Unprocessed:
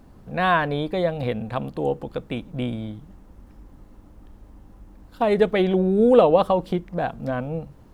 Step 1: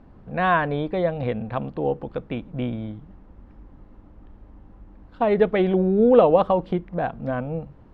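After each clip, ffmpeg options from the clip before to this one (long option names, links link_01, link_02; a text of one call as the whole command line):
ffmpeg -i in.wav -af "lowpass=2600" out.wav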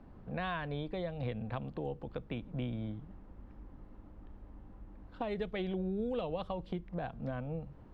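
ffmpeg -i in.wav -filter_complex "[0:a]acrossover=split=120|3000[link_01][link_02][link_03];[link_02]acompressor=threshold=-33dB:ratio=4[link_04];[link_01][link_04][link_03]amix=inputs=3:normalize=0,volume=-5dB" out.wav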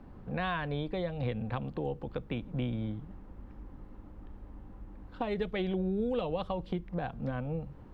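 ffmpeg -i in.wav -af "bandreject=frequency=650:width=14,volume=4dB" out.wav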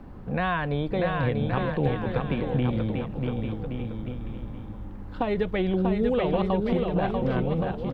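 ffmpeg -i in.wav -filter_complex "[0:a]acrossover=split=3000[link_01][link_02];[link_02]acompressor=threshold=-55dB:ratio=4:attack=1:release=60[link_03];[link_01][link_03]amix=inputs=2:normalize=0,asplit=2[link_04][link_05];[link_05]aecho=0:1:640|1120|1480|1750|1952:0.631|0.398|0.251|0.158|0.1[link_06];[link_04][link_06]amix=inputs=2:normalize=0,volume=7dB" out.wav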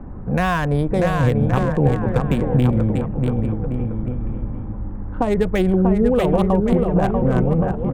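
ffmpeg -i in.wav -filter_complex "[0:a]lowshelf=frequency=200:gain=5,acrossover=split=2000[link_01][link_02];[link_02]acrusher=bits=5:mix=0:aa=0.5[link_03];[link_01][link_03]amix=inputs=2:normalize=0,volume=6dB" out.wav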